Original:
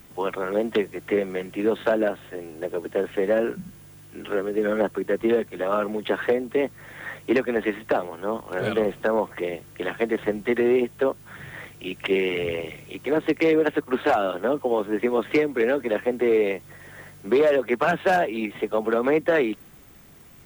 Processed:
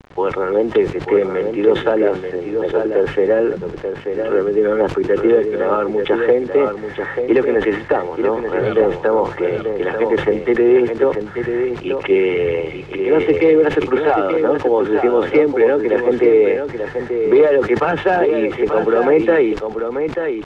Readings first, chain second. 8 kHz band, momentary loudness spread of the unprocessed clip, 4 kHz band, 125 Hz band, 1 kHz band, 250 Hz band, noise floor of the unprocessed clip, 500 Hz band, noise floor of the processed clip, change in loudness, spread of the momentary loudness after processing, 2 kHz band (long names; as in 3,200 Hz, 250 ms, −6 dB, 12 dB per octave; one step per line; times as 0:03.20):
can't be measured, 14 LU, +3.0 dB, +8.0 dB, +6.5 dB, +7.5 dB, −47 dBFS, +9.0 dB, −30 dBFS, +7.5 dB, 9 LU, +4.5 dB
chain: low-pass that shuts in the quiet parts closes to 2,500 Hz, open at −17.5 dBFS
parametric band 73 Hz −2 dB 1.7 octaves
comb filter 2.3 ms, depth 51%
in parallel at −2 dB: brickwall limiter −20.5 dBFS, peak gain reduction 11 dB
on the sum: bit reduction 7 bits
pitch vibrato 1.3 Hz 6.2 cents
head-to-tape spacing loss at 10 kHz 27 dB
on a send: single-tap delay 887 ms −7 dB
on the sum: level that may fall only so fast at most 130 dB per second
level +4.5 dB